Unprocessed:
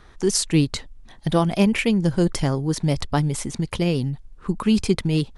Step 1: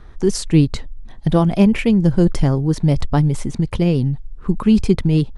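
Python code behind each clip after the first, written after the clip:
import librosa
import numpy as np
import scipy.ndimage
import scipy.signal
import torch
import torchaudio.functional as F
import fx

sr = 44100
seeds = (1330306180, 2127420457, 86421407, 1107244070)

y = fx.tilt_eq(x, sr, slope=-2.0)
y = F.gain(torch.from_numpy(y), 1.0).numpy()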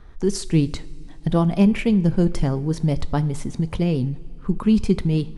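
y = fx.rev_double_slope(x, sr, seeds[0], early_s=0.46, late_s=3.0, knee_db=-15, drr_db=14.0)
y = F.gain(torch.from_numpy(y), -4.5).numpy()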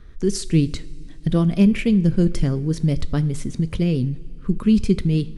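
y = fx.peak_eq(x, sr, hz=840.0, db=-13.5, octaves=0.8)
y = F.gain(torch.from_numpy(y), 1.5).numpy()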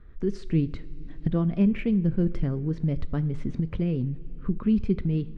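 y = fx.recorder_agc(x, sr, target_db=-12.5, rise_db_per_s=15.0, max_gain_db=30)
y = scipy.signal.sosfilt(scipy.signal.butter(2, 2100.0, 'lowpass', fs=sr, output='sos'), y)
y = F.gain(torch.from_numpy(y), -6.5).numpy()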